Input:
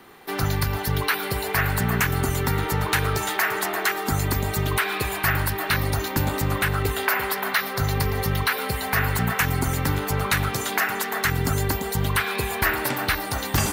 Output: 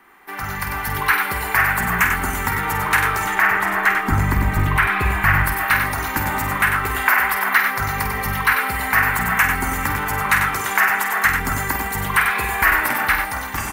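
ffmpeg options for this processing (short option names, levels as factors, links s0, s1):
-filter_complex "[0:a]asettb=1/sr,asplit=3[s0][s1][s2];[s0]atrim=end=3.254[s3];[s1]atrim=start=3.25:end=5.44,asetpts=PTS-STARTPTS,afade=t=in:d=0.004:c=qsin,afade=t=out:st=2.186:d=0.004:c=qsin,bass=f=250:g=11,treble=f=4000:g=-8[s4];[s2]atrim=start=5.436[s5];[s3][s4]acrossfade=d=0.004:c1=hsin:c2=qsin[s6];[s6][s5]acrossfade=d=0.004:c1=qsin:c2=hsin,aecho=1:1:49.56|96.21:0.398|0.501,asoftclip=type=hard:threshold=0.376,dynaudnorm=f=140:g=9:m=3.76,equalizer=f=125:t=o:w=1:g=-10,equalizer=f=500:t=o:w=1:g=-7,equalizer=f=1000:t=o:w=1:g=5,equalizer=f=2000:t=o:w=1:g=7,equalizer=f=4000:t=o:w=1:g=-9,volume=0.562"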